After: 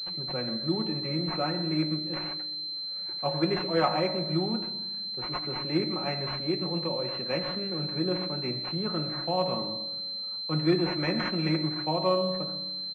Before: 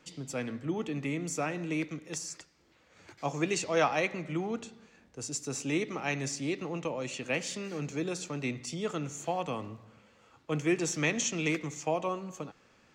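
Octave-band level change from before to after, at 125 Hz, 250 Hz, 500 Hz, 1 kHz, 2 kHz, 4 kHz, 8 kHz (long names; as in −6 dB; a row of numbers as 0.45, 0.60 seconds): +5.0 dB, +4.0 dB, +3.5 dB, +3.5 dB, −3.0 dB, +14.5 dB, below −25 dB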